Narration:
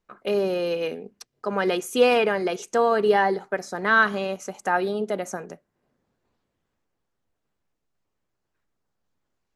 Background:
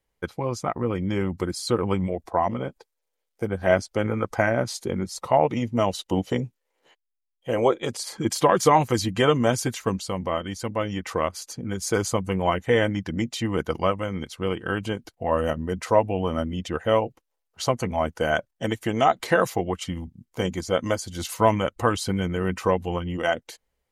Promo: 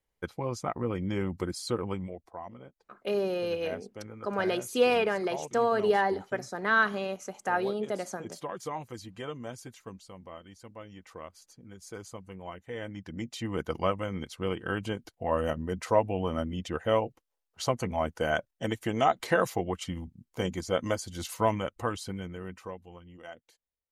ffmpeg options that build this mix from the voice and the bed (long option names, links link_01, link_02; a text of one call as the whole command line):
ffmpeg -i stem1.wav -i stem2.wav -filter_complex "[0:a]adelay=2800,volume=-5.5dB[link_01];[1:a]volume=8.5dB,afade=type=out:start_time=1.51:duration=0.85:silence=0.211349,afade=type=in:start_time=12.73:duration=1.14:silence=0.199526,afade=type=out:start_time=21.03:duration=1.78:silence=0.149624[link_02];[link_01][link_02]amix=inputs=2:normalize=0" out.wav